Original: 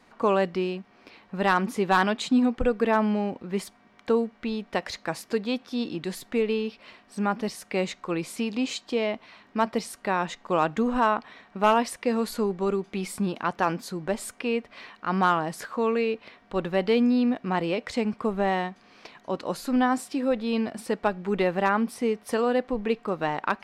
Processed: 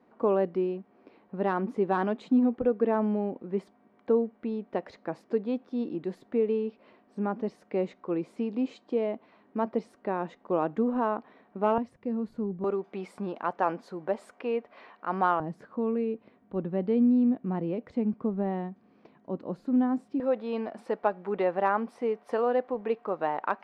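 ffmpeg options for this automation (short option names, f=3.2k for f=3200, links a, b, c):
-af "asetnsamples=n=441:p=0,asendcmd='11.78 bandpass f 130;12.64 bandpass f 620;15.4 bandpass f 210;20.2 bandpass f 680',bandpass=f=360:t=q:w=0.9:csg=0"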